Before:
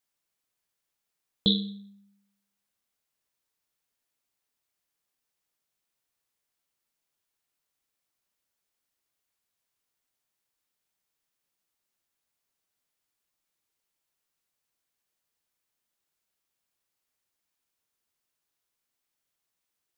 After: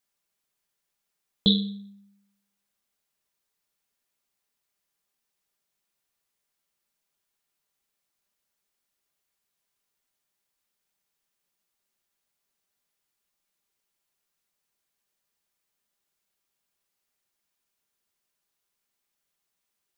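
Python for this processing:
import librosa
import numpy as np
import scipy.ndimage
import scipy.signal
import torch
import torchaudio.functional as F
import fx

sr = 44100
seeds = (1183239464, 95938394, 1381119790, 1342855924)

y = x + 0.32 * np.pad(x, (int(5.0 * sr / 1000.0), 0))[:len(x)]
y = y * librosa.db_to_amplitude(1.5)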